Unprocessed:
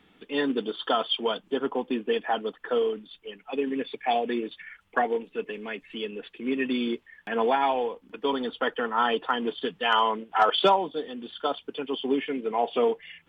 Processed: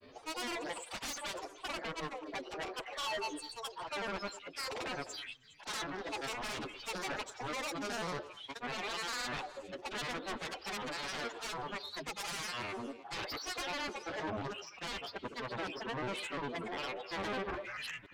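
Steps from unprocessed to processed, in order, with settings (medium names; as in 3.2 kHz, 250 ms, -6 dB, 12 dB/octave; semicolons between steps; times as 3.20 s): gliding tape speed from 190% -> 103%; treble shelf 3.2 kHz -11 dB; band-stop 400 Hz, Q 12; reverse; compression 8:1, threshold -34 dBFS, peak gain reduction 17 dB; reverse; peak limiter -31.5 dBFS, peak gain reduction 8.5 dB; time stretch by phase-locked vocoder 2×; Chebyshev shaper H 7 -7 dB, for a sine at -28 dBFS; granulator 100 ms, grains 20 per s, pitch spread up and down by 7 st; saturation -36.5 dBFS, distortion -10 dB; on a send: repeats whose band climbs or falls 103 ms, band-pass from 440 Hz, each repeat 1.4 oct, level -9.5 dB; on the sum: trim +4 dB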